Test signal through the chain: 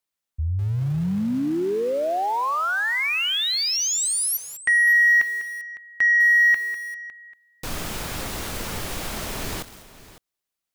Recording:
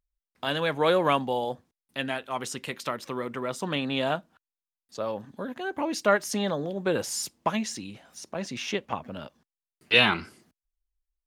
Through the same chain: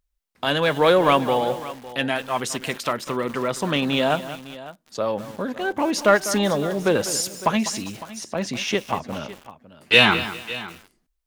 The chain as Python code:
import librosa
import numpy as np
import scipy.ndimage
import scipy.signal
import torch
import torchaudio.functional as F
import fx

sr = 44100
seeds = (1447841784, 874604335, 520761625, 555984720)

p1 = 10.0 ** (-23.5 / 20.0) * np.tanh(x / 10.0 ** (-23.5 / 20.0))
p2 = x + (p1 * librosa.db_to_amplitude(-8.5))
p3 = p2 + 10.0 ** (-17.0 / 20.0) * np.pad(p2, (int(556 * sr / 1000.0), 0))[:len(p2)]
p4 = fx.echo_crushed(p3, sr, ms=199, feedback_pct=35, bits=6, wet_db=-12.5)
y = p4 * librosa.db_to_amplitude(4.5)